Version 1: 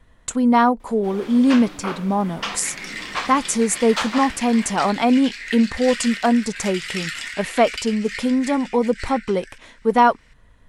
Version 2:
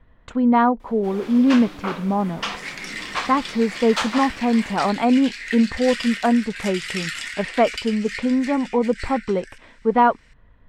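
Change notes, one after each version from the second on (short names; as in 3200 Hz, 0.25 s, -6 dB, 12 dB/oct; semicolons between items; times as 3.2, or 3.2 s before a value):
speech: add air absorption 340 m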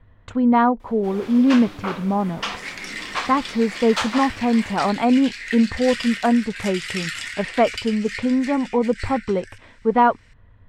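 first sound: add HPF 170 Hz; master: add bell 99 Hz +12.5 dB 0.37 oct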